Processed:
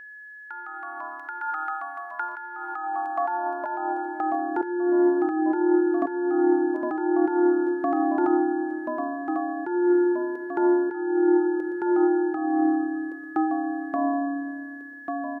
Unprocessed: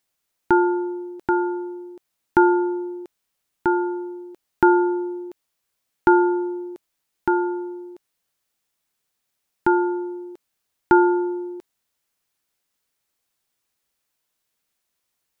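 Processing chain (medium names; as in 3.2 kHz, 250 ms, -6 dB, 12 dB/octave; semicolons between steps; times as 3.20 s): peaking EQ 280 Hz -7.5 dB 0.97 oct; on a send: delay 907 ms -6.5 dB; on the sum: ever faster or slower copies 96 ms, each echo -2 st, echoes 3, each echo -6 dB; simulated room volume 3900 m³, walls mixed, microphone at 0.75 m; compressor with a negative ratio -27 dBFS, ratio -1; high-pass sweep 1.4 kHz -> 360 Hz, 2.27–4.83 s; whistle 1.7 kHz -37 dBFS; treble shelf 2 kHz -8.5 dB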